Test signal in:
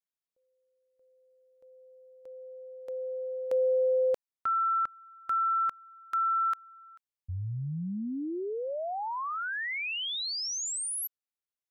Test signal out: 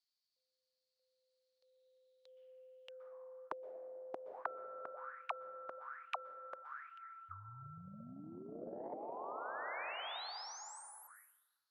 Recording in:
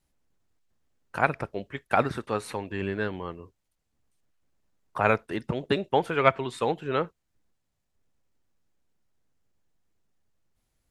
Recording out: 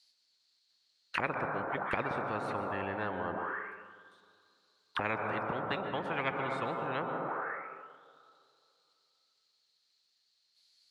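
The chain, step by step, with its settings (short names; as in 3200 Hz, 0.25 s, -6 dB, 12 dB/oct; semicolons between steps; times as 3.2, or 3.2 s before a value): plate-style reverb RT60 2.8 s, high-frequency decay 0.25×, pre-delay 0.11 s, DRR 7.5 dB; auto-wah 540–4500 Hz, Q 9.4, down, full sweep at -29 dBFS; spectral compressor 10:1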